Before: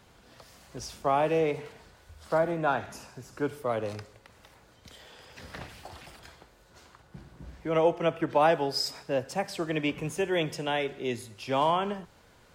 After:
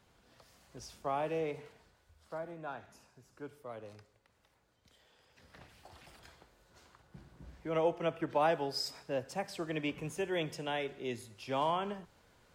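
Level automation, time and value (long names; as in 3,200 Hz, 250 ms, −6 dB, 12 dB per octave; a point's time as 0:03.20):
0:01.63 −9.5 dB
0:02.35 −16 dB
0:05.48 −16 dB
0:06.19 −7 dB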